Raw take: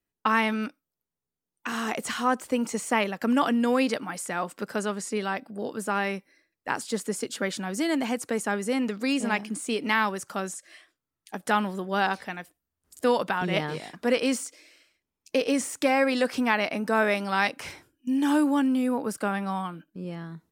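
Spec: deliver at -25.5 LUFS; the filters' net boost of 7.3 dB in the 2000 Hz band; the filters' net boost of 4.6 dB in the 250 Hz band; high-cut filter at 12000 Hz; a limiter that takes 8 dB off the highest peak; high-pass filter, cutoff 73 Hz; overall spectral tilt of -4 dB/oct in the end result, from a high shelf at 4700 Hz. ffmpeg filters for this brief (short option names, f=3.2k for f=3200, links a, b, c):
-af "highpass=73,lowpass=12k,equalizer=f=250:t=o:g=5,equalizer=f=2k:t=o:g=8.5,highshelf=f=4.7k:g=3.5,volume=-1dB,alimiter=limit=-12dB:level=0:latency=1"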